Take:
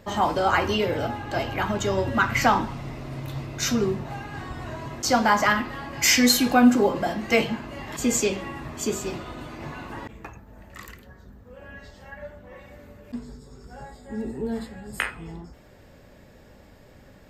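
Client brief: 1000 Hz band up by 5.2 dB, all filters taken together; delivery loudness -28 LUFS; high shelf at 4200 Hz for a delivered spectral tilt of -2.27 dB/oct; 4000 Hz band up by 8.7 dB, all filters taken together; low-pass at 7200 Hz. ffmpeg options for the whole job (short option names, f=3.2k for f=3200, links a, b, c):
-af "lowpass=7.2k,equalizer=f=1k:t=o:g=6,equalizer=f=4k:t=o:g=6,highshelf=f=4.2k:g=8.5,volume=-9dB"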